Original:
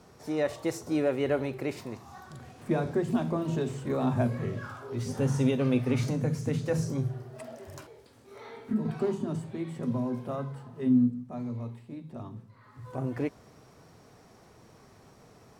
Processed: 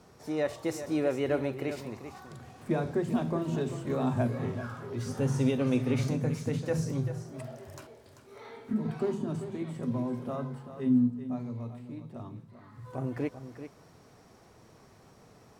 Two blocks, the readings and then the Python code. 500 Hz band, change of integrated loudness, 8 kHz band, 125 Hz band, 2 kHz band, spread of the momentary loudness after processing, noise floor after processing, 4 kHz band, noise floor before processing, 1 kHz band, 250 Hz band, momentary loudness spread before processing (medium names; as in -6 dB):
-1.0 dB, -1.5 dB, -1.0 dB, -1.5 dB, -1.0 dB, 18 LU, -57 dBFS, -1.0 dB, -56 dBFS, -1.0 dB, -1.0 dB, 18 LU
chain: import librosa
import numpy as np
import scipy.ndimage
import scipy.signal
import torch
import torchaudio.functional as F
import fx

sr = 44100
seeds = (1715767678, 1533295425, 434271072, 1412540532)

y = x + 10.0 ** (-11.0 / 20.0) * np.pad(x, (int(390 * sr / 1000.0), 0))[:len(x)]
y = y * librosa.db_to_amplitude(-1.5)